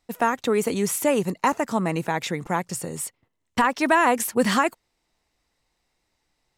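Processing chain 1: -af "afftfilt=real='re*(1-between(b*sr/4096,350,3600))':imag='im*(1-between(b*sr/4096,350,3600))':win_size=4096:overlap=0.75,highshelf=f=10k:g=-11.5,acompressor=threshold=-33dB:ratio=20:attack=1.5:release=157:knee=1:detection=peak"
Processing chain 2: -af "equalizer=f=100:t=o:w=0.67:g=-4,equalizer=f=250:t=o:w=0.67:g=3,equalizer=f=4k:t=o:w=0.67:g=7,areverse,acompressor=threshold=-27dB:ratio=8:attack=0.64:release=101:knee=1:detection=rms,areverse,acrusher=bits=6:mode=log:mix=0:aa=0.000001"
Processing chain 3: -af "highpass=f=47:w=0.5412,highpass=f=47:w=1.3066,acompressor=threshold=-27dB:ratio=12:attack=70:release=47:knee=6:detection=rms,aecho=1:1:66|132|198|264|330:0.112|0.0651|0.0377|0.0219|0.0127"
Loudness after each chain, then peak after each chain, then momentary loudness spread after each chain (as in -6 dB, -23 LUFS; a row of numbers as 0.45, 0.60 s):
-38.5, -33.5, -28.0 LUFS; -26.0, -22.5, -10.5 dBFS; 4, 5, 6 LU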